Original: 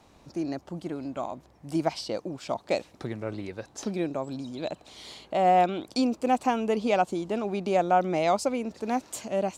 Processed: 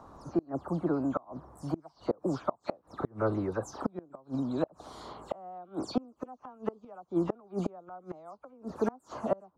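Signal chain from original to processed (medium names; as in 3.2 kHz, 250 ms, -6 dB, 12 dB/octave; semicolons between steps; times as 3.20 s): delay that grows with frequency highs early, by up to 134 ms; resonant high shelf 1.7 kHz -11.5 dB, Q 3; inverted gate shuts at -21 dBFS, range -31 dB; trim +4.5 dB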